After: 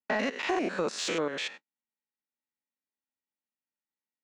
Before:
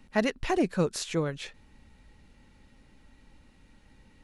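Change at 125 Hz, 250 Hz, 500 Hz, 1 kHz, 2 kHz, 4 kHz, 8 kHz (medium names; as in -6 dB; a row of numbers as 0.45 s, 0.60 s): -13.5 dB, -4.5 dB, -1.5 dB, +0.5 dB, +3.0 dB, +3.0 dB, -0.5 dB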